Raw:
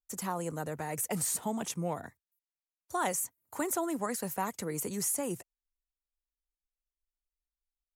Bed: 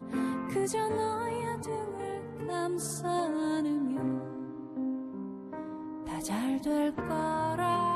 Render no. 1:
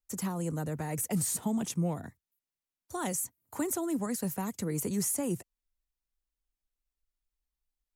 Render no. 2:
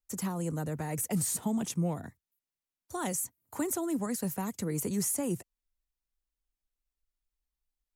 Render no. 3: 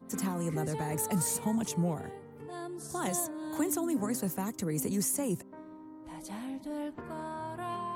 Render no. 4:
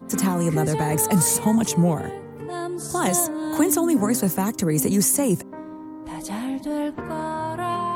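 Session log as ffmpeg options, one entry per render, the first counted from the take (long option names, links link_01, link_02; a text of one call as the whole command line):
ffmpeg -i in.wav -filter_complex "[0:a]acrossover=split=310|3000[link_01][link_02][link_03];[link_01]acontrast=77[link_04];[link_02]alimiter=level_in=6dB:limit=-24dB:level=0:latency=1:release=445,volume=-6dB[link_05];[link_04][link_05][link_03]amix=inputs=3:normalize=0" out.wav
ffmpeg -i in.wav -af anull out.wav
ffmpeg -i in.wav -i bed.wav -filter_complex "[1:a]volume=-8.5dB[link_01];[0:a][link_01]amix=inputs=2:normalize=0" out.wav
ffmpeg -i in.wav -af "volume=11.5dB" out.wav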